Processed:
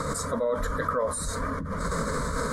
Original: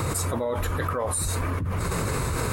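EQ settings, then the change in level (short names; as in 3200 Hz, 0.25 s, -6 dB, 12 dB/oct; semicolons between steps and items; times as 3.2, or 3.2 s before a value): LPF 6600 Hz 12 dB/oct; notches 60/120/180/240 Hz; fixed phaser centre 530 Hz, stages 8; +2.5 dB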